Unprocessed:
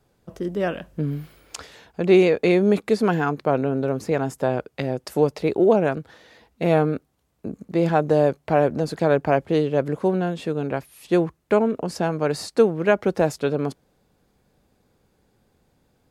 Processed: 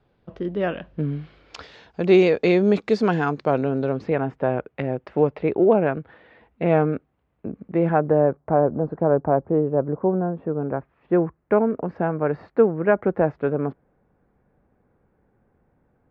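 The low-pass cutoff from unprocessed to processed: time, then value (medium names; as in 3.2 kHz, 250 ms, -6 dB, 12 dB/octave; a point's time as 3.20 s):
low-pass 24 dB/octave
1.11 s 3.7 kHz
2.07 s 6 kHz
3.77 s 6 kHz
4.21 s 2.6 kHz
7.63 s 2.6 kHz
8.67 s 1.2 kHz
10.34 s 1.2 kHz
11.39 s 1.9 kHz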